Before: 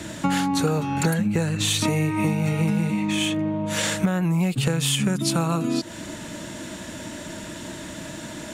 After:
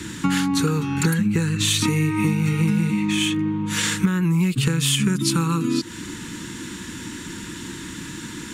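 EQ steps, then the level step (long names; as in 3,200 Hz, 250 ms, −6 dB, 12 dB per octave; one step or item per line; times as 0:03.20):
Butterworth band-reject 650 Hz, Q 1.2
+2.5 dB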